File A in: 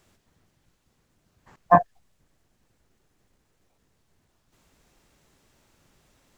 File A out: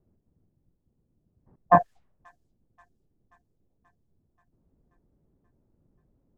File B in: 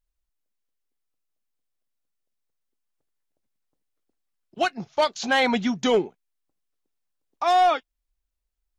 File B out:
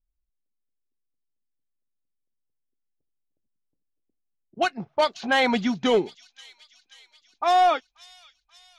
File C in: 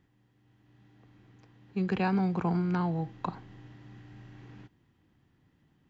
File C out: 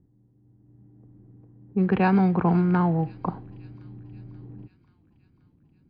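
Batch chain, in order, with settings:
level-controlled noise filter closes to 360 Hz, open at -18.5 dBFS; feedback echo behind a high-pass 532 ms, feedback 61%, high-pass 4.1 kHz, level -11.5 dB; normalise loudness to -23 LUFS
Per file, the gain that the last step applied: -1.5 dB, 0.0 dB, +8.0 dB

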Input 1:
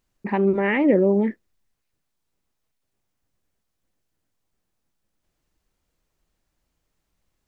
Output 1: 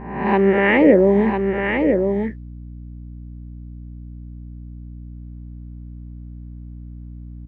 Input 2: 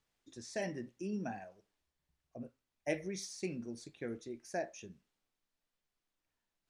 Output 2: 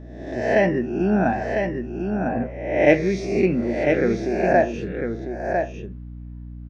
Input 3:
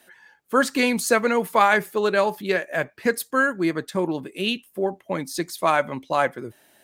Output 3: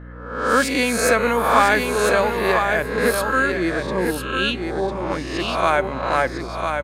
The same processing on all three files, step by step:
reverse spectral sustain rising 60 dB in 0.84 s; level-controlled noise filter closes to 1.5 kHz, open at -15 dBFS; hum 60 Hz, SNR 14 dB; bass shelf 160 Hz -3 dB; on a send: delay 1001 ms -5.5 dB; on the sum: peak normalisation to -1.5 dBFS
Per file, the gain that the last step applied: +4.0 dB, +19.0 dB, -0.5 dB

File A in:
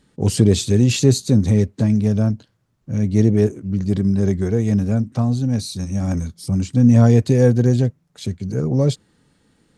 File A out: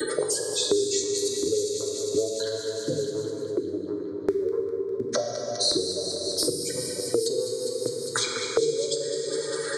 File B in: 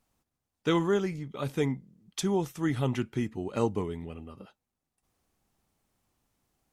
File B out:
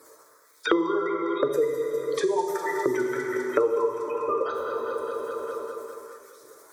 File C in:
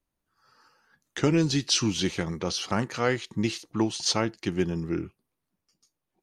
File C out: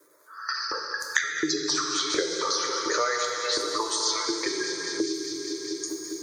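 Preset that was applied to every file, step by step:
companding laws mixed up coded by mu; high-pass 44 Hz 24 dB/octave; gate with hold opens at -45 dBFS; spectral gate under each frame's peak -20 dB strong; peaking EQ 270 Hz -5.5 dB 0.32 oct; compression, threshold -24 dBFS; feedback comb 150 Hz, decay 0.17 s, harmonics all, mix 60%; LFO high-pass saw up 1.4 Hz 320–4500 Hz; static phaser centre 760 Hz, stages 6; on a send: echo whose repeats swap between lows and highs 101 ms, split 890 Hz, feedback 78%, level -10.5 dB; on the sum: plate-style reverb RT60 1.5 s, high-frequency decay 0.9×, DRR 2 dB; three bands compressed up and down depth 100%; normalise loudness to -27 LUFS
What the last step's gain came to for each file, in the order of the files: +15.0 dB, +14.0 dB, +12.0 dB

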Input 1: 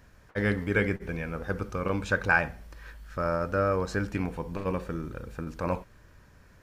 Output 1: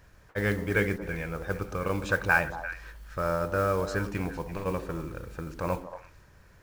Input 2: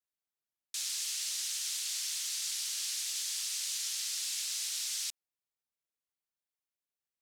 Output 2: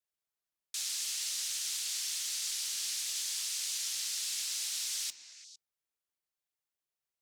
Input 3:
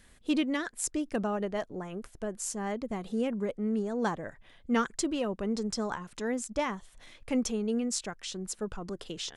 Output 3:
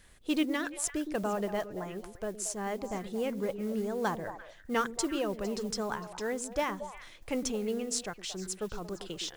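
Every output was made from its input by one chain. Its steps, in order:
peaking EQ 240 Hz -8 dB 0.39 oct; modulation noise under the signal 24 dB; repeats whose band climbs or falls 114 ms, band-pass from 280 Hz, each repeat 1.4 oct, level -6 dB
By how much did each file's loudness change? -0.5 LU, 0.0 LU, -1.5 LU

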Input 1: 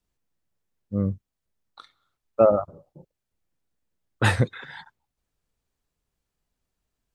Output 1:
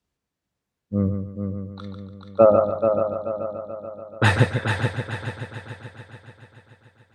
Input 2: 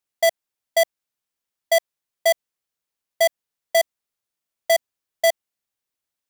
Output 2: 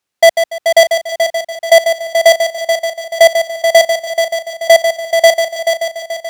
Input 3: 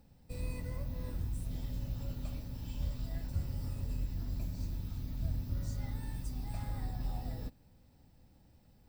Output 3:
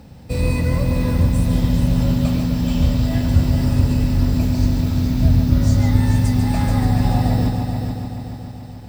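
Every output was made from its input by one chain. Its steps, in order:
high-pass 59 Hz; treble shelf 9.4 kHz -11 dB; multi-head delay 144 ms, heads first and third, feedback 62%, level -7.5 dB; peak normalisation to -1.5 dBFS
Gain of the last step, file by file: +3.0 dB, +11.5 dB, +22.0 dB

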